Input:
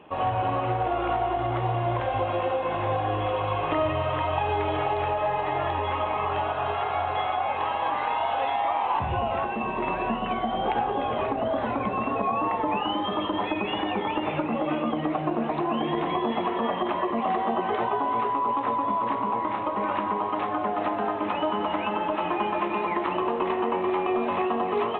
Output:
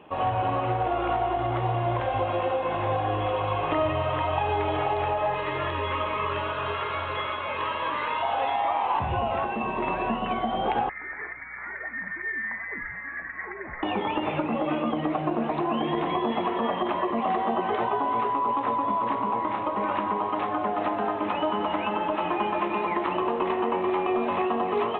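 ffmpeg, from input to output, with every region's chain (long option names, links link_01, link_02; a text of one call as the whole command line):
ffmpeg -i in.wav -filter_complex "[0:a]asettb=1/sr,asplit=3[link_01][link_02][link_03];[link_01]atrim=end=5.344[link_04];[link_02]atrim=start=5.34:end=8.23,asetpts=PTS-STARTPTS,afade=type=in:duration=0.004:curve=qsin,afade=type=out:start_time=2.886:duration=0.004:curve=qsin,asuperstop=centerf=760:order=4:qfactor=2.8,highshelf=frequency=2900:gain=11,acrossover=split=2700[link_05][link_06];[link_06]acompressor=threshold=-43dB:ratio=4:attack=1:release=60[link_07];[link_05][link_07]amix=inputs=2:normalize=0[link_08];[link_03]atrim=start=8.226[link_09];[link_04][link_08]acrossfade=duration=0.004:curve1=hsin:curve2=qsin[link_10];[link_10][link_09]acrossfade=duration=0.004:curve1=qsin:curve2=hsin,asettb=1/sr,asplit=3[link_11][link_12][link_13];[link_11]atrim=end=10.894[link_14];[link_12]atrim=start=10.89:end=13.83,asetpts=PTS-STARTPTS,afade=type=in:duration=0.004:curve=qsin,afade=type=out:start_time=2.936:duration=0.004:curve=qsin,highpass=frequency=1100:width=0.5412,highpass=frequency=1100:width=1.3066,lowpass=frequency=2500:width_type=q:width=0.5098,lowpass=frequency=2500:width_type=q:width=0.6013,lowpass=frequency=2500:width_type=q:width=0.9,lowpass=frequency=2500:width_type=q:width=2.563,afreqshift=-2900,aeval=exprs='val(0)+0.00112*(sin(2*PI*60*n/s)+sin(2*PI*2*60*n/s)/2+sin(2*PI*3*60*n/s)/3+sin(2*PI*4*60*n/s)/4+sin(2*PI*5*60*n/s)/5)':channel_layout=same[link_15];[link_13]atrim=start=13.826[link_16];[link_14][link_15]acrossfade=duration=0.004:curve1=hsin:curve2=qsin[link_17];[link_17][link_16]acrossfade=duration=0.004:curve1=qsin:curve2=hsin" out.wav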